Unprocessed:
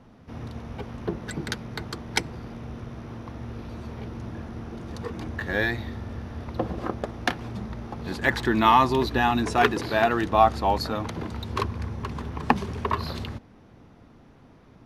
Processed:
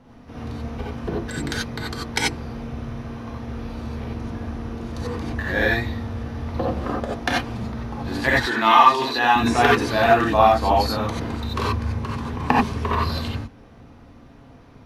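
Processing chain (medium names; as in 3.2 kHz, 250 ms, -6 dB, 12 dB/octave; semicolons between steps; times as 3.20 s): 8.37–9.36 s: frequency weighting A; gated-style reverb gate 110 ms rising, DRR -4 dB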